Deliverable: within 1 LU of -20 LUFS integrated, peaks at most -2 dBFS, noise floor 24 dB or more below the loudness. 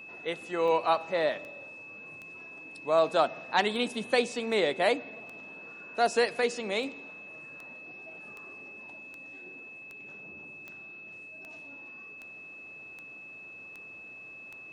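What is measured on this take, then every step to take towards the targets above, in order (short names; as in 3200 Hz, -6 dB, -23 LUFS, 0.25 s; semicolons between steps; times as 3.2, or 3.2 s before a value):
clicks 19; steady tone 2600 Hz; tone level -44 dBFS; loudness -28.5 LUFS; peak -11.0 dBFS; loudness target -20.0 LUFS
-> de-click; notch 2600 Hz, Q 30; gain +8.5 dB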